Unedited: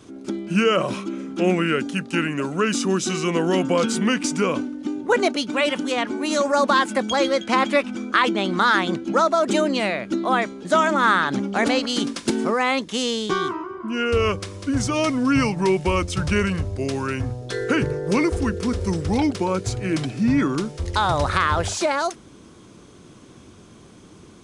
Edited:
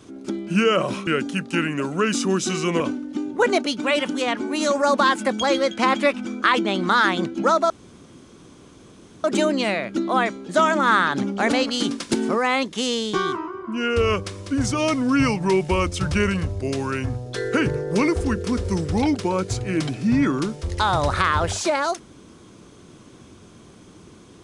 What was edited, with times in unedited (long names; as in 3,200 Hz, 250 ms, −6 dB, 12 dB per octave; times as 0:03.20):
0:01.07–0:01.67: remove
0:03.40–0:04.50: remove
0:09.40: splice in room tone 1.54 s